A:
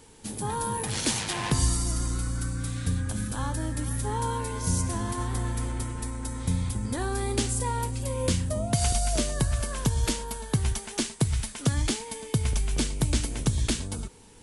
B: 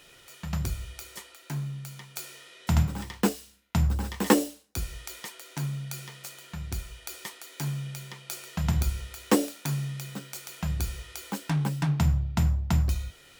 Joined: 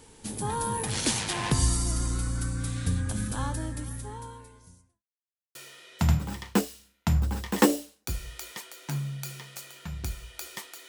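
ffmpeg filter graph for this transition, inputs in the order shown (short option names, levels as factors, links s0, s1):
-filter_complex "[0:a]apad=whole_dur=10.88,atrim=end=10.88,asplit=2[s0][s1];[s0]atrim=end=5.04,asetpts=PTS-STARTPTS,afade=t=out:st=3.4:d=1.64:c=qua[s2];[s1]atrim=start=5.04:end=5.55,asetpts=PTS-STARTPTS,volume=0[s3];[1:a]atrim=start=2.23:end=7.56,asetpts=PTS-STARTPTS,afade=t=in:d=0.004:c=hsin[s4];[s2][s3][s4]concat=n=3:v=0:a=1"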